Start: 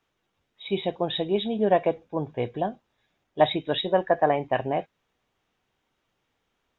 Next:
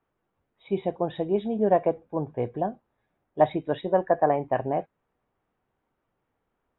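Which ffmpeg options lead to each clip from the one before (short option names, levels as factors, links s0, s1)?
-af "lowpass=1400"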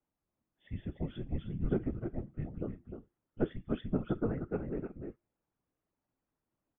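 -af "aecho=1:1:306:0.473,afftfilt=real='hypot(re,im)*cos(2*PI*random(0))':imag='hypot(re,im)*sin(2*PI*random(1))':win_size=512:overlap=0.75,afreqshift=-350,volume=0.562"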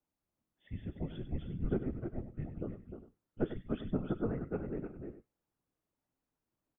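-af "aecho=1:1:97:0.282,volume=0.794"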